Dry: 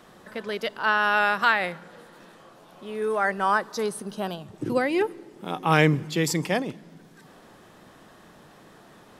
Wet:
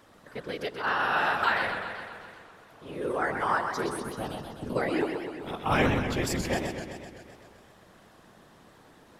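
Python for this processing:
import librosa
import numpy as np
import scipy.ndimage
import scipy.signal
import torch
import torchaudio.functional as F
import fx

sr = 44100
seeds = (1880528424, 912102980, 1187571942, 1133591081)

y = fx.whisperise(x, sr, seeds[0])
y = fx.echo_warbled(y, sr, ms=128, feedback_pct=66, rate_hz=2.8, cents=149, wet_db=-6.5)
y = y * 10.0 ** (-5.5 / 20.0)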